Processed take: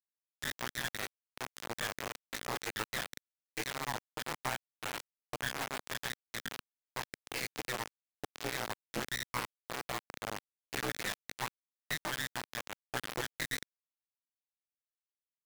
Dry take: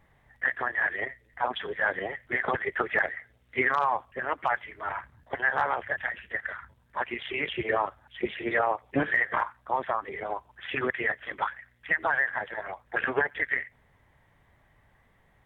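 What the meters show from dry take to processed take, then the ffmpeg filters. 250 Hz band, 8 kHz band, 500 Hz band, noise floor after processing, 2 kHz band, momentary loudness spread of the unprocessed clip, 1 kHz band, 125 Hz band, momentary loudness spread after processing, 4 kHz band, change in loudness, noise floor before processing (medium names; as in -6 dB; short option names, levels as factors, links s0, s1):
-9.0 dB, no reading, -12.5 dB, under -85 dBFS, -12.5 dB, 10 LU, -12.5 dB, -2.5 dB, 8 LU, +2.5 dB, -10.0 dB, -64 dBFS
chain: -af "aeval=exprs='val(0)+0.00282*(sin(2*PI*60*n/s)+sin(2*PI*2*60*n/s)/2+sin(2*PI*3*60*n/s)/3+sin(2*PI*4*60*n/s)/4+sin(2*PI*5*60*n/s)/5)':c=same,crystalizer=i=4.5:c=0,lowpass=1700,acompressor=threshold=0.0355:ratio=4,aeval=exprs='val(0)*sin(2*PI*62*n/s)':c=same,flanger=delay=15:depth=4.8:speed=1.3,acrusher=bits=3:dc=4:mix=0:aa=0.000001,lowshelf=f=97:g=-11.5,volume=1.5"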